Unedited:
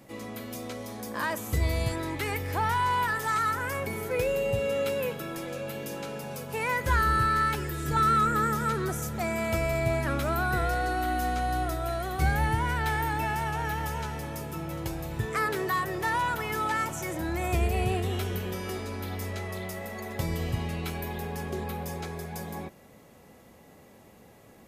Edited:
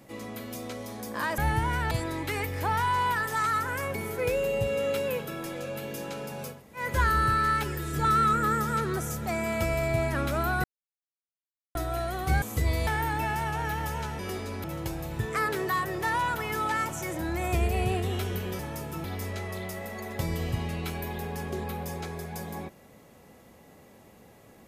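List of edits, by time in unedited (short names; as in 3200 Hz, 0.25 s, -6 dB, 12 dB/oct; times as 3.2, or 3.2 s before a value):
1.38–1.83 swap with 12.34–12.87
6.47–6.73 room tone, crossfade 0.16 s
10.56–11.67 mute
14.19–14.64 swap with 18.59–19.04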